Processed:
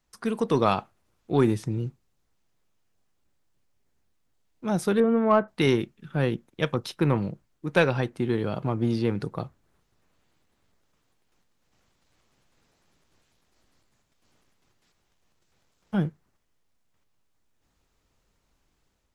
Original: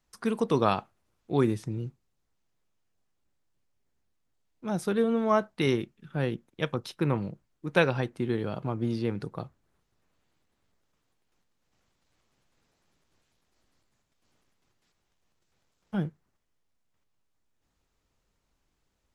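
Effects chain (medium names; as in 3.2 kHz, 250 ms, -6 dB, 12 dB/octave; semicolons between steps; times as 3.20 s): 5.00–5.48 s: low-pass 2.2 kHz 24 dB/octave; in parallel at -5 dB: saturation -20.5 dBFS, distortion -12 dB; on the sum: level rider gain up to 4 dB; trim -3 dB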